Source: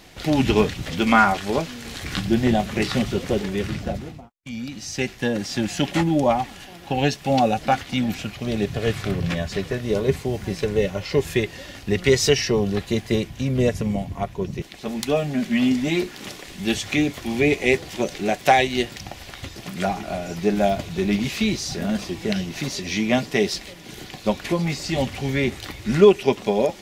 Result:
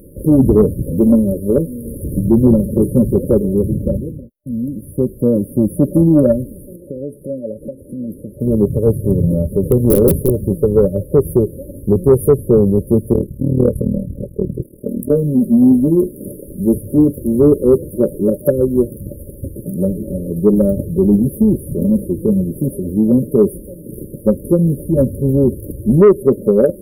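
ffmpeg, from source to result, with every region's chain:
ffmpeg -i in.wav -filter_complex "[0:a]asettb=1/sr,asplit=3[link_01][link_02][link_03];[link_01]atrim=end=6.764[link_04];[link_02]atrim=start=6.76:end=8.4,asetpts=PTS-STARTPTS,afade=type=in:duration=0.004:curve=qsin,afade=type=out:start_time=1.636:duration=0.004:curve=qsin,bass=frequency=250:gain=-9,treble=frequency=4000:gain=-4,acompressor=threshold=-33dB:ratio=3:attack=3.2:release=140:knee=1:detection=peak,lowpass=11000[link_05];[link_03]atrim=start=8.396[link_06];[link_04][link_05]acrossfade=duration=0.004:curve1=hsin:curve2=qsin[link_07];[link_07][link_06]acrossfade=duration=0.004:curve1=qsin:curve2=hsin,asettb=1/sr,asplit=3[link_08][link_09][link_10];[link_08]atrim=end=9.634[link_11];[link_09]atrim=start=9.63:end=10.3,asetpts=PTS-STARTPTS,afade=type=in:duration=0.004:curve=qsin,afade=type=out:start_time=0.666:duration=0.004:curve=qsin,acontrast=29,aeval=exprs='(mod(3.16*val(0)+1,2)-1)/3.16':channel_layout=same[link_12];[link_10]atrim=start=10.296[link_13];[link_11][link_12]acrossfade=duration=0.004:curve1=hsin:curve2=qsin[link_14];[link_14][link_13]acrossfade=duration=0.004:curve1=qsin:curve2=hsin,asettb=1/sr,asplit=3[link_15][link_16][link_17];[link_15]atrim=end=13.134[link_18];[link_16]atrim=start=13.13:end=15.11,asetpts=PTS-STARTPTS,afade=type=in:duration=0.004:curve=qsin,afade=type=out:start_time=1.976:duration=0.004:curve=qsin,tremolo=f=38:d=1,asplit=2[link_19][link_20];[link_20]adelay=16,volume=-11dB[link_21];[link_19][link_21]amix=inputs=2:normalize=0,atrim=end_sample=87318[link_22];[link_17]atrim=start=15.106[link_23];[link_18][link_22]acrossfade=duration=0.004:curve1=hsin:curve2=qsin[link_24];[link_24][link_23]acrossfade=duration=0.004:curve1=qsin:curve2=hsin,afftfilt=real='re*(1-between(b*sr/4096,600,9400))':imag='im*(1-between(b*sr/4096,600,9400))':win_size=4096:overlap=0.75,acontrast=89,alimiter=level_in=4.5dB:limit=-1dB:release=50:level=0:latency=1,volume=-1dB" out.wav

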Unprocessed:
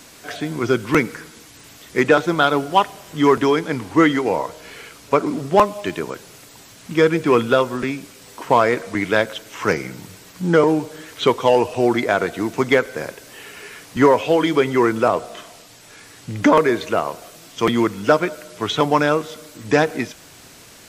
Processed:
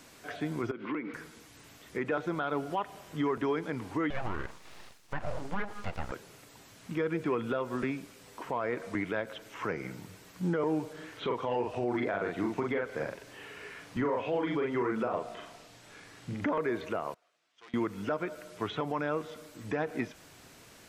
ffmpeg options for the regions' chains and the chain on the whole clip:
ffmpeg -i in.wav -filter_complex "[0:a]asettb=1/sr,asplit=3[link_01][link_02][link_03];[link_01]atrim=end=0.714[link_04];[link_02]atrim=start=0.71:end=1.14,asetpts=PTS-STARTPTS,afade=type=in:duration=0.004:curve=qsin,afade=type=out:start_time=0.426:duration=0.004:curve=qsin,highpass=frequency=170:width=0.5412,highpass=frequency=170:width=1.3066,equalizer=frequency=300:width_type=q:width=4:gain=9,equalizer=frequency=1100:width_type=q:width=4:gain=5,equalizer=frequency=2100:width_type=q:width=4:gain=4,lowpass=frequency=3200:width=0.5412,lowpass=frequency=3200:width=1.3066,acompressor=threshold=-22dB:ratio=16:attack=3.2:release=140:knee=1:detection=peak[link_05];[link_03]atrim=start=1.136[link_06];[link_04][link_05]acrossfade=duration=0.004:curve1=hsin:curve2=qsin[link_07];[link_07][link_06]acrossfade=duration=0.004:curve1=qsin:curve2=hsin,asettb=1/sr,asplit=3[link_08][link_09][link_10];[link_08]atrim=end=4.104[link_11];[link_09]atrim=start=4.1:end=6.12,asetpts=PTS-STARTPTS,afade=type=in:duration=0.004:curve=qsin,afade=type=out:start_time=2.016:duration=0.004:curve=qsin,agate=range=-33dB:threshold=-39dB:ratio=3:release=100:detection=peak,lowpass=9000,aeval=exprs='abs(val(0))':channel_layout=same[link_12];[link_10]atrim=start=6.116[link_13];[link_11][link_12]acrossfade=duration=0.004:curve1=hsin:curve2=qsin[link_14];[link_14][link_13]acrossfade=duration=0.004:curve1=qsin:curve2=hsin,asettb=1/sr,asplit=3[link_15][link_16][link_17];[link_15]atrim=end=10.934[link_18];[link_16]atrim=start=10.93:end=16.49,asetpts=PTS-STARTPTS,afade=type=in:duration=0.004:curve=qsin,afade=type=out:start_time=5.556:duration=0.004:curve=qsin,highshelf=frequency=7900:gain=-10,asplit=2[link_19][link_20];[link_20]adelay=41,volume=-3dB[link_21];[link_19][link_21]amix=inputs=2:normalize=0,atrim=end_sample=245196[link_22];[link_17]atrim=start=16.486[link_23];[link_18][link_22]acrossfade=duration=0.004:curve1=hsin:curve2=qsin[link_24];[link_24][link_23]acrossfade=duration=0.004:curve1=qsin:curve2=hsin,asettb=1/sr,asplit=3[link_25][link_26][link_27];[link_25]atrim=end=17.144[link_28];[link_26]atrim=start=17.14:end=17.74,asetpts=PTS-STARTPTS,afade=type=in:duration=0.004:curve=qsin,afade=type=out:start_time=0.596:duration=0.004:curve=qsin,lowpass=1700,aeval=exprs='(tanh(11.2*val(0)+0.6)-tanh(0.6))/11.2':channel_layout=same,aderivative[link_29];[link_27]atrim=start=17.736[link_30];[link_28][link_29]acrossfade=duration=0.004:curve1=hsin:curve2=qsin[link_31];[link_31][link_30]acrossfade=duration=0.004:curve1=qsin:curve2=hsin,acrossover=split=2800[link_32][link_33];[link_33]acompressor=threshold=-47dB:ratio=4:attack=1:release=60[link_34];[link_32][link_34]amix=inputs=2:normalize=0,alimiter=limit=-13.5dB:level=0:latency=1:release=148,volume=-8.5dB" out.wav

